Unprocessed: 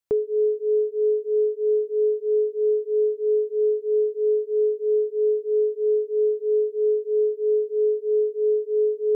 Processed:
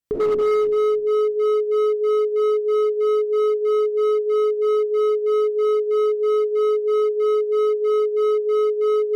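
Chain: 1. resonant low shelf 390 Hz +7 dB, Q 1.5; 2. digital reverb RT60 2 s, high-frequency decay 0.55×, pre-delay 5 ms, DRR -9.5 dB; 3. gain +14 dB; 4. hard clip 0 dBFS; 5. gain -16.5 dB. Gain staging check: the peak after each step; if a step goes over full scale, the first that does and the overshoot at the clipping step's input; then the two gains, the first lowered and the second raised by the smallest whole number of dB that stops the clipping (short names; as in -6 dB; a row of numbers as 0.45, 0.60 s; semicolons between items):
-11.5, -4.5, +9.5, 0.0, -16.5 dBFS; step 3, 9.5 dB; step 3 +4 dB, step 5 -6.5 dB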